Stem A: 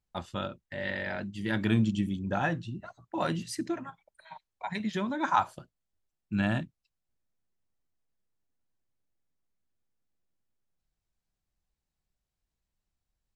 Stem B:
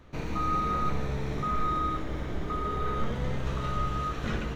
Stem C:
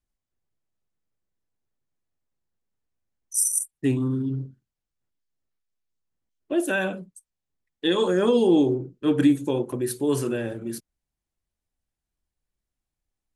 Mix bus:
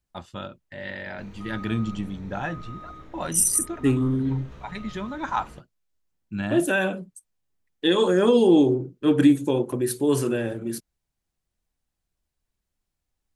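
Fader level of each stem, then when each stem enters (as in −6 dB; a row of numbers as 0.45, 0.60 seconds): −1.0, −13.0, +2.0 decibels; 0.00, 1.05, 0.00 seconds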